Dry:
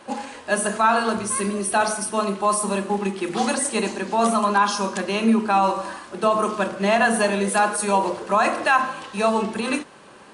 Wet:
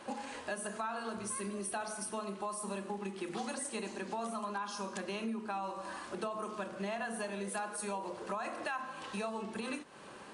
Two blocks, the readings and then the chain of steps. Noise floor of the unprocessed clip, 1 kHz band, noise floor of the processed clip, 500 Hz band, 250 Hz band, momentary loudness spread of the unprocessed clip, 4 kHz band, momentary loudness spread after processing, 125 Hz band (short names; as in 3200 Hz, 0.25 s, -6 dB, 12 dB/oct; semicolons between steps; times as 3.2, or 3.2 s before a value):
-46 dBFS, -19.0 dB, -50 dBFS, -17.5 dB, -17.0 dB, 7 LU, -16.5 dB, 3 LU, -16.0 dB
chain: compressor 5:1, threshold -33 dBFS, peak gain reduction 17.5 dB; gain -4.5 dB